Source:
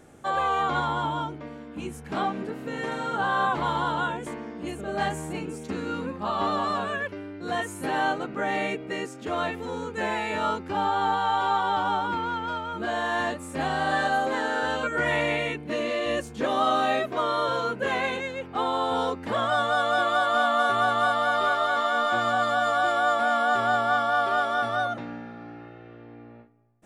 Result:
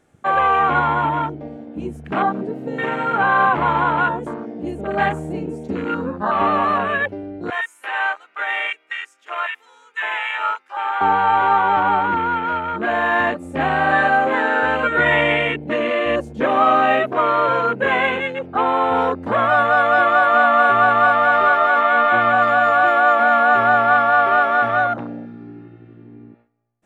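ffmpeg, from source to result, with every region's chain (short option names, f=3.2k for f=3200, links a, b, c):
-filter_complex "[0:a]asettb=1/sr,asplit=3[a][b][c];[a]atrim=end=7.504[d];[b]atrim=start=7.5:end=11.01,asetpts=PTS-STARTPTS,afade=t=in:d=0.004:c=qsin,afade=t=out:st=3.506:d=0.004:c=qsin,highpass=1.2k,equalizer=f=4.3k:t=o:w=0.23:g=-7[e];[c]atrim=start=11.006[f];[d][e]acrossfade=d=0.004:c1=hsin:c2=qsin[g];[g][f]acrossfade=d=0.004:c1=qsin:c2=hsin,asettb=1/sr,asplit=3[h][i][j];[h]atrim=end=21.814[k];[i]atrim=start=21.81:end=22.33,asetpts=PTS-STARTPTS,afade=t=in:d=0.004:c=qsin,afade=t=out:st=0.516:d=0.004:c=qsin,acrossover=split=4900[l][m];[m]acompressor=threshold=-57dB:ratio=4:attack=1:release=60[n];[l][n]amix=inputs=2:normalize=0,equalizer=f=2.2k:t=o:w=0.32:g=4.5[o];[j]atrim=start=22.326[p];[k][o]acrossfade=d=0.004:c1=hsin:c2=qsin[q];[q][p]acrossfade=d=0.004:c1=qsin:c2=hsin,acontrast=79,afwtdn=0.0447,equalizer=f=2.3k:w=0.46:g=4"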